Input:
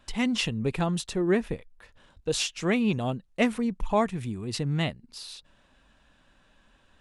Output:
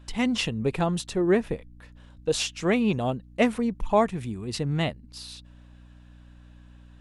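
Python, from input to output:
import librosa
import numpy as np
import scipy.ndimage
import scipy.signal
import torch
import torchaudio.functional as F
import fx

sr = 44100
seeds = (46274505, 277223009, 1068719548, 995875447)

y = fx.dynamic_eq(x, sr, hz=590.0, q=0.71, threshold_db=-36.0, ratio=4.0, max_db=4)
y = fx.add_hum(y, sr, base_hz=60, snr_db=22)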